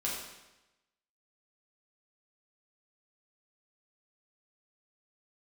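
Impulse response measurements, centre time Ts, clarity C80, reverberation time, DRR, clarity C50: 61 ms, 4.0 dB, 1.0 s, -5.5 dB, 1.5 dB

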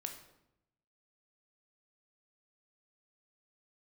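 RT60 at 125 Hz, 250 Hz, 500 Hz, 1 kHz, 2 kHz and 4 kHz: 1.2 s, 1.0 s, 0.85 s, 0.80 s, 0.65 s, 0.60 s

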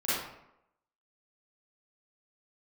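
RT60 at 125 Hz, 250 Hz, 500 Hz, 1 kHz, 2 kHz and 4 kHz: 0.70 s, 0.80 s, 0.85 s, 0.80 s, 0.70 s, 0.50 s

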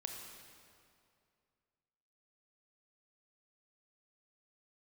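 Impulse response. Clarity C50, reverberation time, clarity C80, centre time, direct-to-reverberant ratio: 3.0 dB, 2.4 s, 4.5 dB, 70 ms, 2.0 dB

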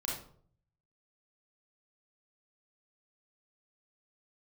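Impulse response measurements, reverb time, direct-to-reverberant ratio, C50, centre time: 0.55 s, -4.5 dB, 2.0 dB, 45 ms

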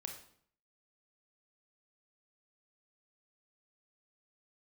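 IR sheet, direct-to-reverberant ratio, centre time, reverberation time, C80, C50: 3.0 dB, 22 ms, 0.60 s, 10.5 dB, 7.0 dB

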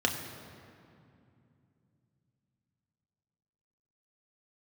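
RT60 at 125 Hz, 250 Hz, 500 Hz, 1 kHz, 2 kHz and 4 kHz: 4.5 s, 3.9 s, 2.7 s, 2.4 s, 2.1 s, 1.6 s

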